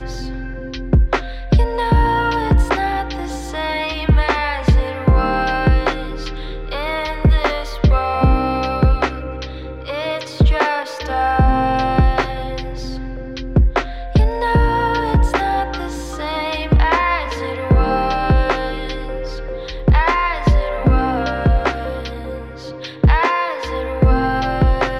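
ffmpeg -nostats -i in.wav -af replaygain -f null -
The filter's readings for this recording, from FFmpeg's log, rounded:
track_gain = +0.1 dB
track_peak = 0.458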